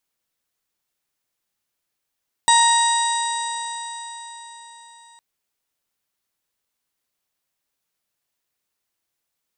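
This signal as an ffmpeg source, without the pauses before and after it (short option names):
-f lavfi -i "aevalsrc='0.224*pow(10,-3*t/4.46)*sin(2*PI*930.3*t)+0.0891*pow(10,-3*t/4.46)*sin(2*PI*1868.38*t)+0.0251*pow(10,-3*t/4.46)*sin(2*PI*2821.9*t)+0.112*pow(10,-3*t/4.46)*sin(2*PI*3798.33*t)+0.0299*pow(10,-3*t/4.46)*sin(2*PI*4804.83*t)+0.0299*pow(10,-3*t/4.46)*sin(2*PI*5848.19*t)+0.0316*pow(10,-3*t/4.46)*sin(2*PI*6934.77*t)+0.141*pow(10,-3*t/4.46)*sin(2*PI*8070.48*t)':d=2.71:s=44100"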